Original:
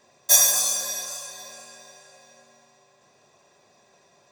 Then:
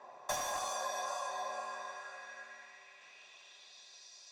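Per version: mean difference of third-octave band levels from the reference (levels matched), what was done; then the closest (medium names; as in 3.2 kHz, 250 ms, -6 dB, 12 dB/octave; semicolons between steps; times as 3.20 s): 9.5 dB: band-pass sweep 900 Hz -> 4.8 kHz, 1.53–4.11 s; one-sided clip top -37.5 dBFS; compression 10:1, threshold -47 dBFS, peak gain reduction 13.5 dB; trim +13 dB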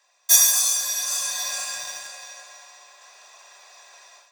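7.0 dB: Bessel high-pass 1.1 kHz, order 4; level rider gain up to 16 dB; in parallel at -11 dB: bit crusher 5-bit; on the sum: trim -1.5 dB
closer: second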